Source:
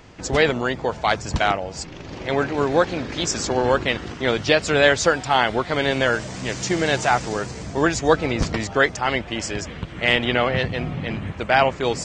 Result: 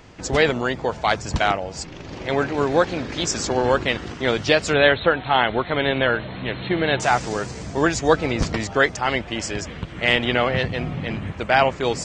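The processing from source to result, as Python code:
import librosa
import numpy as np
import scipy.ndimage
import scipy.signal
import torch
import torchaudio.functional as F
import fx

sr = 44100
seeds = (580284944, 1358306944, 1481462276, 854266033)

y = fx.brickwall_lowpass(x, sr, high_hz=4300.0, at=(4.73, 7.0))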